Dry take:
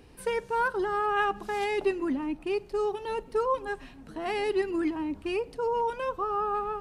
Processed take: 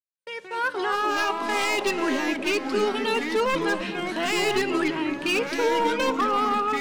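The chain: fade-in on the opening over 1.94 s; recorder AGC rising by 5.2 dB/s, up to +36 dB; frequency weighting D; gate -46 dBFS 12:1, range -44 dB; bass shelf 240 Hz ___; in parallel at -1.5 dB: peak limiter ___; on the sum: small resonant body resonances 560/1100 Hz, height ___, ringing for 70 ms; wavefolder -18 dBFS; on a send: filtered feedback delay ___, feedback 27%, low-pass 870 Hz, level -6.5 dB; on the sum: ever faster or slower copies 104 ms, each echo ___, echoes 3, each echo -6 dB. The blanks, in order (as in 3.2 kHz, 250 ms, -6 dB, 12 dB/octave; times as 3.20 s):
-7 dB, -21.5 dBFS, 9 dB, 260 ms, -4 st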